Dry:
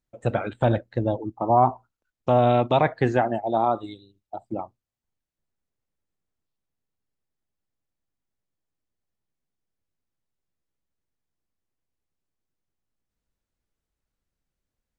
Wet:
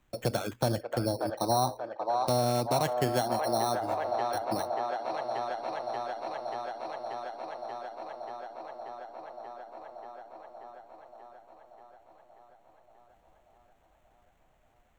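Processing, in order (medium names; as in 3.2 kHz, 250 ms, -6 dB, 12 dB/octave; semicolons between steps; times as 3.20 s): sample-and-hold 9×; feedback echo behind a band-pass 584 ms, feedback 68%, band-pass 1 kHz, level -4.5 dB; three bands compressed up and down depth 70%; trim -6 dB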